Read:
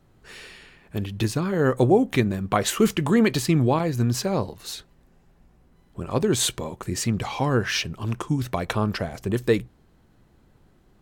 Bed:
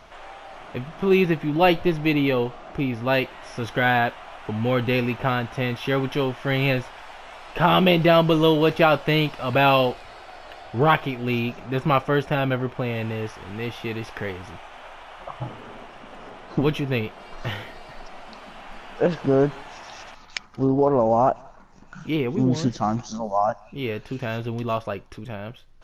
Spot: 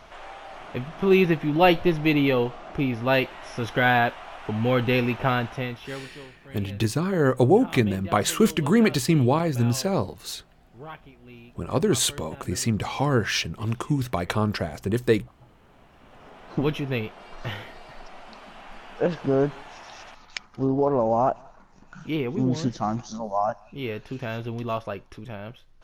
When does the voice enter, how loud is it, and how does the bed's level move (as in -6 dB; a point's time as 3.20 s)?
5.60 s, 0.0 dB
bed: 5.46 s 0 dB
6.29 s -22.5 dB
15.42 s -22.5 dB
16.52 s -3 dB